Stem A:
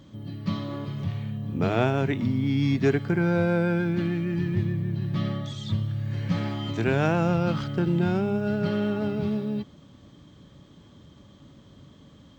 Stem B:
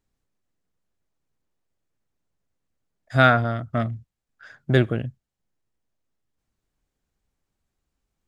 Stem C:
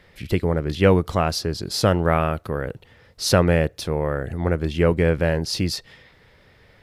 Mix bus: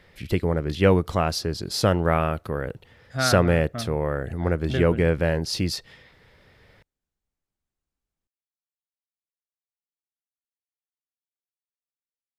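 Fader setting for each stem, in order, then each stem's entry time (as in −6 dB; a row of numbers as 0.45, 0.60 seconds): muted, −9.0 dB, −2.0 dB; muted, 0.00 s, 0.00 s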